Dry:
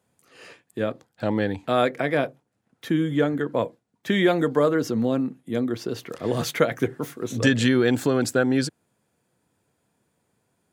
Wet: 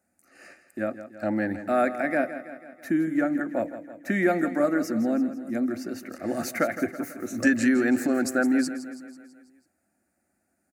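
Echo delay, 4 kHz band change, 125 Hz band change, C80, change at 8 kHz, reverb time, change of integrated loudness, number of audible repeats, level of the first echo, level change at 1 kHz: 164 ms, −12.0 dB, −11.5 dB, no reverb audible, −2.0 dB, no reverb audible, −2.0 dB, 5, −12.5 dB, −2.0 dB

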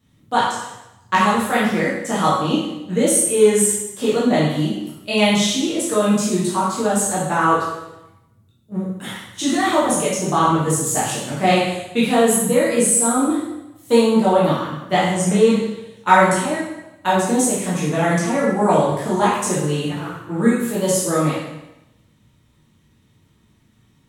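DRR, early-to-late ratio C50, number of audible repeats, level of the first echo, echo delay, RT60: −8.5 dB, 1.0 dB, no echo audible, no echo audible, no echo audible, 0.95 s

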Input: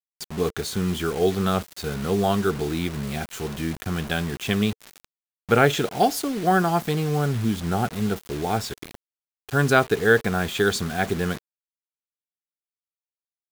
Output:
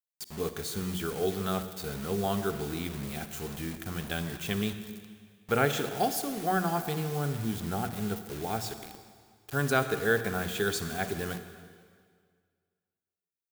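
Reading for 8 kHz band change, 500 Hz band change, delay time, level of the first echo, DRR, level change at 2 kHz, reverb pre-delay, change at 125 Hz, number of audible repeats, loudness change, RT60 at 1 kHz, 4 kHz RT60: −4.5 dB, −8.0 dB, no echo audible, no echo audible, 9.5 dB, −8.0 dB, 38 ms, −8.5 dB, no echo audible, −8.0 dB, 1.9 s, 1.8 s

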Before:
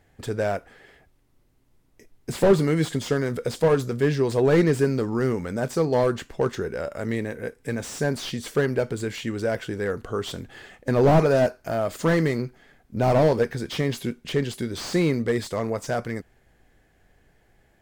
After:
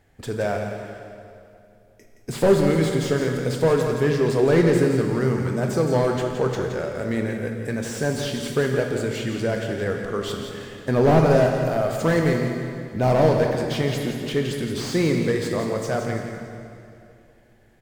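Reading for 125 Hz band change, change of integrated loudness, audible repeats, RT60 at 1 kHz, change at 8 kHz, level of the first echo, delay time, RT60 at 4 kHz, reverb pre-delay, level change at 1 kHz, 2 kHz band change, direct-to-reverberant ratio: +2.5 dB, +2.0 dB, 1, 2.4 s, +2.0 dB, −8.5 dB, 170 ms, 2.1 s, 23 ms, +2.0 dB, +2.0 dB, 2.0 dB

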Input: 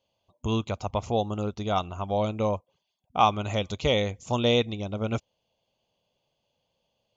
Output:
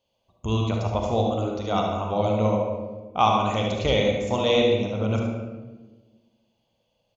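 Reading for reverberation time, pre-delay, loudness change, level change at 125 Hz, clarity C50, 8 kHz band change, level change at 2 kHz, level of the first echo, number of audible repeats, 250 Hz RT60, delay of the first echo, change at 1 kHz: 1.3 s, 35 ms, +3.5 dB, +4.5 dB, 0.0 dB, can't be measured, +3.0 dB, −6.0 dB, 1, 1.8 s, 73 ms, +3.0 dB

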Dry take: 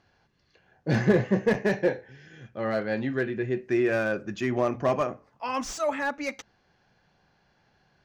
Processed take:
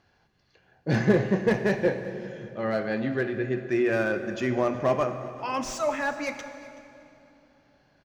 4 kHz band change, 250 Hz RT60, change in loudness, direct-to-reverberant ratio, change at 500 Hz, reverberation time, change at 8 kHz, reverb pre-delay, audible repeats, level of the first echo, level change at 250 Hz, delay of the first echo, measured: +0.5 dB, 3.5 s, +0.5 dB, 8.5 dB, +0.5 dB, 2.9 s, +0.5 dB, 22 ms, 1, −20.5 dB, +0.5 dB, 377 ms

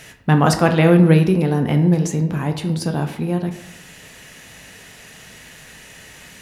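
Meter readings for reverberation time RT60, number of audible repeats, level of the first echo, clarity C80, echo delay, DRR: 0.85 s, no echo audible, no echo audible, 12.5 dB, no echo audible, 5.0 dB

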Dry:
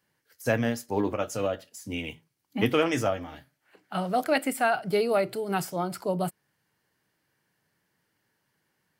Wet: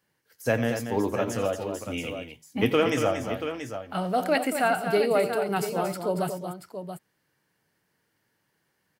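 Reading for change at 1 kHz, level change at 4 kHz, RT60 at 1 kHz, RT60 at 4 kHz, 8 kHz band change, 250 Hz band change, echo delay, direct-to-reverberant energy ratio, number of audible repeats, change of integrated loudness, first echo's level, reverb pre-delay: +1.5 dB, +1.0 dB, no reverb audible, no reverb audible, +1.0 dB, +1.0 dB, 87 ms, no reverb audible, 3, +1.0 dB, −14.0 dB, no reverb audible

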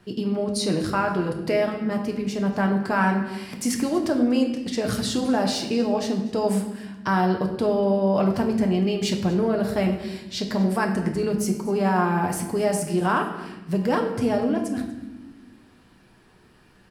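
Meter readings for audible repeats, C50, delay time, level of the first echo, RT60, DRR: 1, 7.5 dB, 241 ms, −19.5 dB, 1.1 s, 2.0 dB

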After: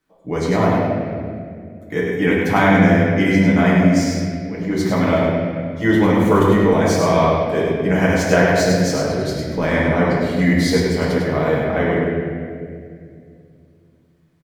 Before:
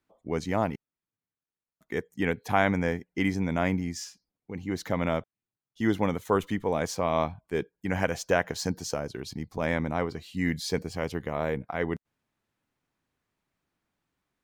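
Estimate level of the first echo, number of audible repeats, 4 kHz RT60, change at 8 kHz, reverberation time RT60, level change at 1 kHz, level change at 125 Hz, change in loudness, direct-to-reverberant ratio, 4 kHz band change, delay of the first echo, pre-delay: −4.5 dB, 1, 1.5 s, +10.0 dB, 2.3 s, +11.0 dB, +14.5 dB, +12.5 dB, −7.0 dB, +11.0 dB, 101 ms, 6 ms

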